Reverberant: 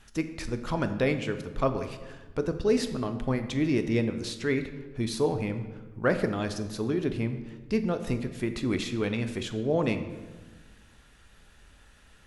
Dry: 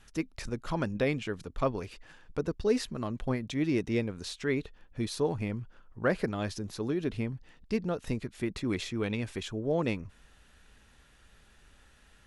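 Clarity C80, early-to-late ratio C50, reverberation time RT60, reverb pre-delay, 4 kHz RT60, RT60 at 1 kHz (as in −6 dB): 12.0 dB, 10.5 dB, 1.3 s, 11 ms, 0.80 s, 1.2 s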